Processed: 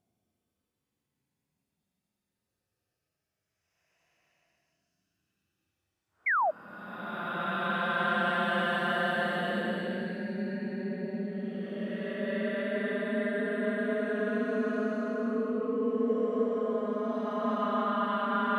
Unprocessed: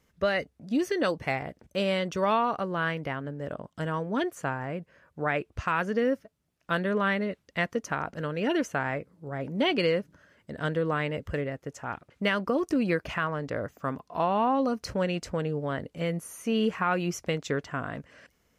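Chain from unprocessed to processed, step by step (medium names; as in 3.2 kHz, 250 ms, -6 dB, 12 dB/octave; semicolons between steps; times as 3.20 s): frequency shift +28 Hz; Paulstretch 34×, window 0.05 s, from 6.49 s; painted sound fall, 6.26–6.51 s, 580–2300 Hz -22 dBFS; trim -4 dB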